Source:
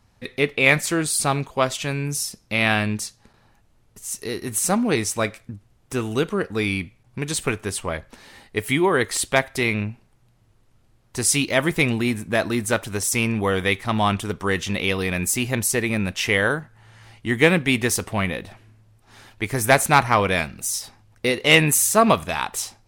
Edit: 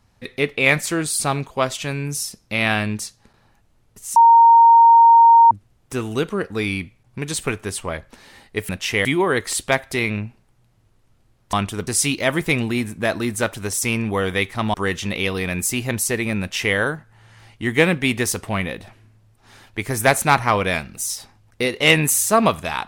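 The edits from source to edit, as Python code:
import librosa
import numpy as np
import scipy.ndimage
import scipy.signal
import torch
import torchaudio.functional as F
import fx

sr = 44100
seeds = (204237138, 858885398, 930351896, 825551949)

y = fx.edit(x, sr, fx.bleep(start_s=4.16, length_s=1.35, hz=925.0, db=-6.5),
    fx.move(start_s=14.04, length_s=0.34, to_s=11.17),
    fx.duplicate(start_s=16.04, length_s=0.36, to_s=8.69), tone=tone)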